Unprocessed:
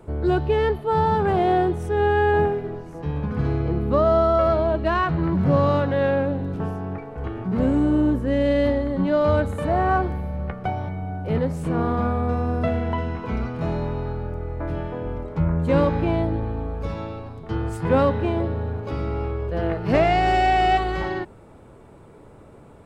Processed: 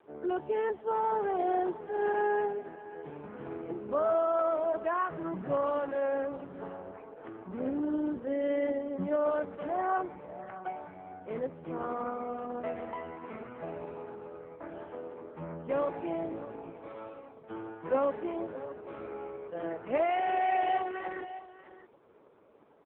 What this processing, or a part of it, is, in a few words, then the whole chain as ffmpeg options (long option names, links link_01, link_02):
satellite phone: -filter_complex "[0:a]asplit=3[link_01][link_02][link_03];[link_01]afade=type=out:start_time=8.41:duration=0.02[link_04];[link_02]adynamicequalizer=threshold=0.0141:dfrequency=190:dqfactor=3:tfrequency=190:tqfactor=3:attack=5:release=100:ratio=0.375:range=2.5:mode=boostabove:tftype=bell,afade=type=in:start_time=8.41:duration=0.02,afade=type=out:start_time=10.18:duration=0.02[link_05];[link_03]afade=type=in:start_time=10.18:duration=0.02[link_06];[link_04][link_05][link_06]amix=inputs=3:normalize=0,highpass=320,lowpass=3100,aecho=1:1:618:0.178,volume=-8dB" -ar 8000 -c:a libopencore_amrnb -b:a 4750